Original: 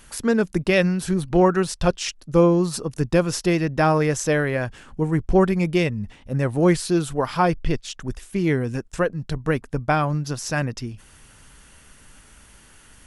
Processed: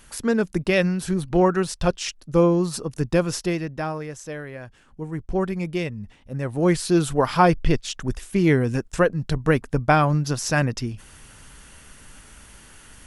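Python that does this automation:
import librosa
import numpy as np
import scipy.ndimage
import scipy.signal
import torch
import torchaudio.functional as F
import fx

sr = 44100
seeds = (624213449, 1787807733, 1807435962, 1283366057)

y = fx.gain(x, sr, db=fx.line((3.33, -1.5), (4.07, -13.0), (4.59, -13.0), (5.52, -6.0), (6.38, -6.0), (7.05, 3.0)))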